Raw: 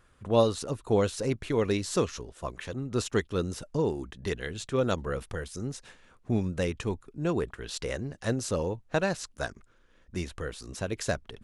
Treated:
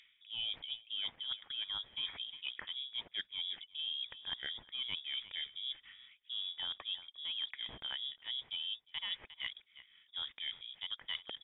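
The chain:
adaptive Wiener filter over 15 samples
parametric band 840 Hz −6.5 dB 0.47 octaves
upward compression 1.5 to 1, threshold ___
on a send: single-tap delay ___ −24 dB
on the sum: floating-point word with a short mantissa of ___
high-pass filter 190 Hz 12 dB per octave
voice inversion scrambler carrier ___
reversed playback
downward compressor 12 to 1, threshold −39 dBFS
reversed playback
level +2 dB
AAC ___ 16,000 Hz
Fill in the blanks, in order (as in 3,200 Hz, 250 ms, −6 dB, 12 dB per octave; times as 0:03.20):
−45 dBFS, 356 ms, 4 bits, 3,600 Hz, 48 kbit/s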